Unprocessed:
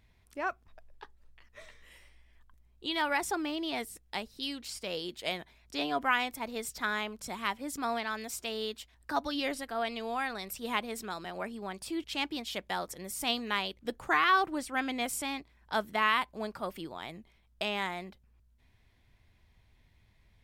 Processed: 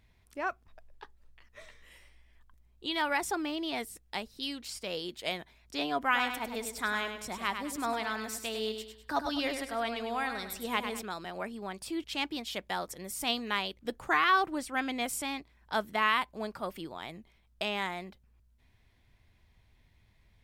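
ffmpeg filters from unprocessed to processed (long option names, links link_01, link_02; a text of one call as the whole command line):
ffmpeg -i in.wav -filter_complex "[0:a]asettb=1/sr,asplit=3[link_01][link_02][link_03];[link_01]atrim=end=6.034[link_04];[link_02]atrim=start=6.03:end=11.02,asetpts=PTS-STARTPTS,afade=type=in:duration=0.004:curve=qsin,afade=type=out:start_time=4.986:duration=0.004:curve=qsin,aecho=1:1:101|202|303|404:0.422|0.156|0.0577|0.0214,atrim=end_sample=220059[link_05];[link_03]atrim=start=11.016[link_06];[link_04][link_05]acrossfade=duration=0.004:curve1=hsin:curve2=qsin[link_07];[link_07][link_06]acrossfade=duration=0.004:curve1=qsin:curve2=hsin" out.wav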